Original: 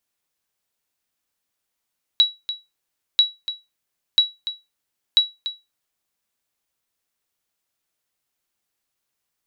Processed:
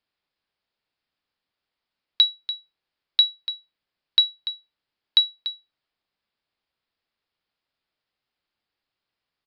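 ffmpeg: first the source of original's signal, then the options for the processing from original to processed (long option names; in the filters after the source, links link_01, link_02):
-f lavfi -i "aevalsrc='0.473*(sin(2*PI*3900*mod(t,0.99))*exp(-6.91*mod(t,0.99)/0.22)+0.237*sin(2*PI*3900*max(mod(t,0.99)-0.29,0))*exp(-6.91*max(mod(t,0.99)-0.29,0)/0.22))':duration=3.96:sample_rate=44100"
-af "aresample=11025,aresample=44100"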